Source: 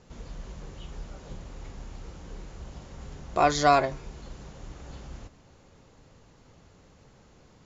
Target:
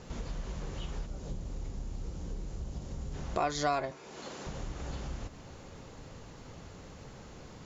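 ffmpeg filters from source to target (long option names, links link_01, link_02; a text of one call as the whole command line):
ffmpeg -i in.wav -filter_complex "[0:a]asplit=3[link_01][link_02][link_03];[link_01]afade=type=out:start_time=1.05:duration=0.02[link_04];[link_02]equalizer=frequency=1700:width=0.37:gain=-10.5,afade=type=in:start_time=1.05:duration=0.02,afade=type=out:start_time=3.13:duration=0.02[link_05];[link_03]afade=type=in:start_time=3.13:duration=0.02[link_06];[link_04][link_05][link_06]amix=inputs=3:normalize=0,asettb=1/sr,asplit=3[link_07][link_08][link_09];[link_07]atrim=end=3.914[link_10];[link_08]atrim=start=3.91:end=4.47,asetpts=PTS-STARTPTS,afade=type=in:duration=0.004:curve=qsin,afade=type=out:start_time=0.556:duration=0.004:curve=qsin,highpass=300[link_11];[link_09]atrim=start=4.466[link_12];[link_10][link_11]acrossfade=duration=0.004:curve1=hsin:curve2=qsin[link_13];[link_13][link_12]acrossfade=duration=0.004:curve1=qsin:curve2=hsin,acompressor=threshold=-44dB:ratio=2.5,volume=7.5dB" out.wav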